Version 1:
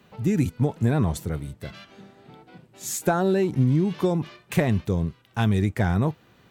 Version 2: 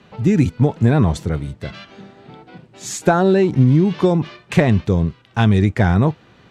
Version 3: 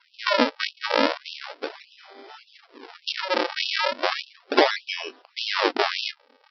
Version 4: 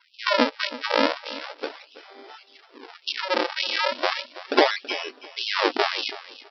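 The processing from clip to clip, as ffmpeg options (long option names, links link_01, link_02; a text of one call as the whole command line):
ffmpeg -i in.wav -af "lowpass=6000,volume=7.5dB" out.wav
ffmpeg -i in.wav -af "aresample=11025,acrusher=samples=18:mix=1:aa=0.000001:lfo=1:lforange=28.8:lforate=0.35,aresample=44100,afftfilt=real='re*gte(b*sr/1024,230*pow(2600/230,0.5+0.5*sin(2*PI*1.7*pts/sr)))':imag='im*gte(b*sr/1024,230*pow(2600/230,0.5+0.5*sin(2*PI*1.7*pts/sr)))':win_size=1024:overlap=0.75,volume=1dB" out.wav
ffmpeg -i in.wav -af "aecho=1:1:328|656:0.158|0.0349" out.wav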